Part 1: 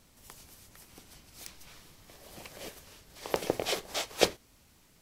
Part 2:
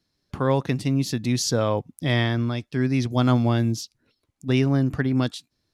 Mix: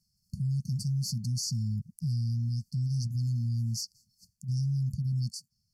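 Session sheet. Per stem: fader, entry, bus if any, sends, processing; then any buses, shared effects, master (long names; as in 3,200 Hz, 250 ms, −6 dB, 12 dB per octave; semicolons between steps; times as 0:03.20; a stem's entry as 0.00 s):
−15.0 dB, 0.00 s, no send, automatic ducking −12 dB, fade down 0.30 s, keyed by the second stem
+0.5 dB, 0.00 s, no send, no processing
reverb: not used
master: linear-phase brick-wall band-stop 220–4,300 Hz; low-shelf EQ 74 Hz −5 dB; brickwall limiter −25 dBFS, peak gain reduction 10 dB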